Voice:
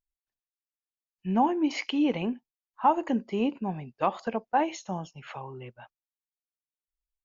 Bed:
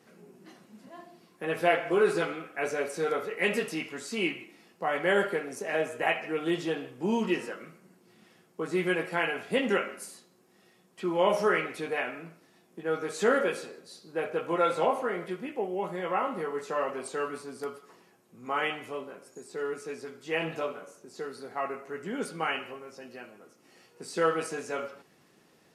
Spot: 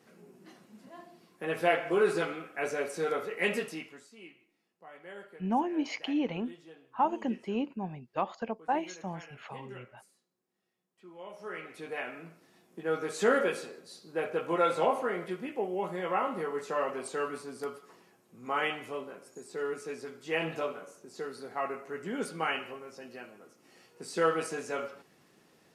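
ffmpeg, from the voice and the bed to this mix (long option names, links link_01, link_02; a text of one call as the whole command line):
ffmpeg -i stem1.wav -i stem2.wav -filter_complex "[0:a]adelay=4150,volume=-5dB[link_01];[1:a]volume=18.5dB,afade=type=out:start_time=3.48:duration=0.63:silence=0.105925,afade=type=in:start_time=11.38:duration=1.15:silence=0.0944061[link_02];[link_01][link_02]amix=inputs=2:normalize=0" out.wav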